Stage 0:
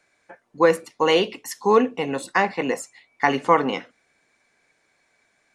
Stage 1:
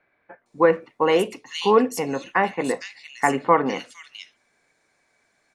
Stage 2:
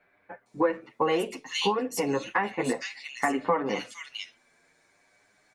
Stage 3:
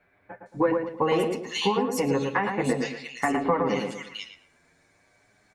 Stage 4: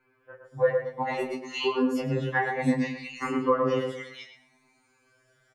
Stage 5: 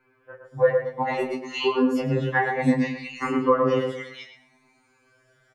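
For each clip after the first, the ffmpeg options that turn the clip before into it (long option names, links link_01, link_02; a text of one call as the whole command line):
ffmpeg -i in.wav -filter_complex "[0:a]acrossover=split=2800[link_01][link_02];[link_02]adelay=460[link_03];[link_01][link_03]amix=inputs=2:normalize=0" out.wav
ffmpeg -i in.wav -filter_complex "[0:a]acompressor=threshold=-25dB:ratio=4,asplit=2[link_01][link_02];[link_02]adelay=8.1,afreqshift=0.61[link_03];[link_01][link_03]amix=inputs=2:normalize=1,volume=5dB" out.wav
ffmpeg -i in.wav -filter_complex "[0:a]equalizer=frequency=67:width=0.52:gain=12,asplit=2[link_01][link_02];[link_02]adelay=112,lowpass=frequency=1400:poles=1,volume=-3.5dB,asplit=2[link_03][link_04];[link_04]adelay=112,lowpass=frequency=1400:poles=1,volume=0.38,asplit=2[link_05][link_06];[link_06]adelay=112,lowpass=frequency=1400:poles=1,volume=0.38,asplit=2[link_07][link_08];[link_08]adelay=112,lowpass=frequency=1400:poles=1,volume=0.38,asplit=2[link_09][link_10];[link_10]adelay=112,lowpass=frequency=1400:poles=1,volume=0.38[link_11];[link_01][link_03][link_05][link_07][link_09][link_11]amix=inputs=6:normalize=0" out.wav
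ffmpeg -i in.wav -filter_complex "[0:a]acrossover=split=360|650|4400[link_01][link_02][link_03][link_04];[link_04]acompressor=threshold=-52dB:ratio=6[link_05];[link_01][link_02][link_03][link_05]amix=inputs=4:normalize=0,asplit=2[link_06][link_07];[link_07]adelay=28,volume=-11dB[link_08];[link_06][link_08]amix=inputs=2:normalize=0,afftfilt=real='re*2.45*eq(mod(b,6),0)':imag='im*2.45*eq(mod(b,6),0)':win_size=2048:overlap=0.75" out.wav
ffmpeg -i in.wav -af "highshelf=frequency=4800:gain=-5.5,volume=4dB" out.wav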